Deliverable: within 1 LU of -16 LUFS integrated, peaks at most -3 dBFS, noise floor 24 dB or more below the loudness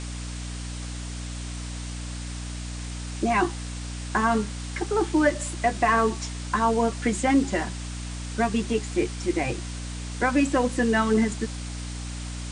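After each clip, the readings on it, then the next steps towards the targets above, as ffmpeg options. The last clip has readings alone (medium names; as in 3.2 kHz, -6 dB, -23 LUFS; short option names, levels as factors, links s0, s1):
hum 60 Hz; highest harmonic 300 Hz; hum level -32 dBFS; noise floor -34 dBFS; noise floor target -51 dBFS; loudness -26.5 LUFS; peak level -9.0 dBFS; loudness target -16.0 LUFS
-> -af "bandreject=f=60:t=h:w=6,bandreject=f=120:t=h:w=6,bandreject=f=180:t=h:w=6,bandreject=f=240:t=h:w=6,bandreject=f=300:t=h:w=6"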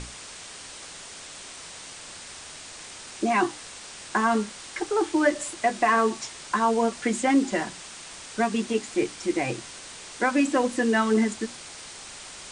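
hum not found; noise floor -42 dBFS; noise floor target -50 dBFS
-> -af "afftdn=nr=8:nf=-42"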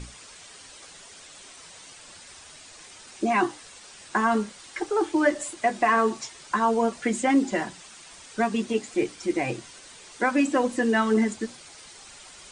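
noise floor -48 dBFS; noise floor target -50 dBFS
-> -af "afftdn=nr=6:nf=-48"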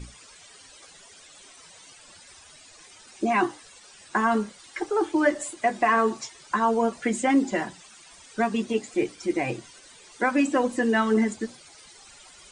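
noise floor -51 dBFS; loudness -25.5 LUFS; peak level -10.0 dBFS; loudness target -16.0 LUFS
-> -af "volume=2.99,alimiter=limit=0.708:level=0:latency=1"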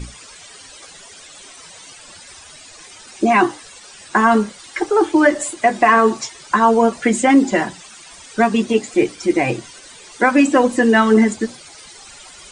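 loudness -16.0 LUFS; peak level -3.0 dBFS; noise floor -41 dBFS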